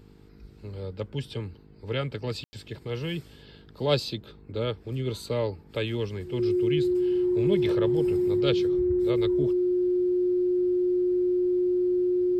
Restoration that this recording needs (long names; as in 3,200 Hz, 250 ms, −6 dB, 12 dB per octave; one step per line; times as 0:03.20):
hum removal 51 Hz, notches 9
notch filter 360 Hz, Q 30
ambience match 0:02.44–0:02.53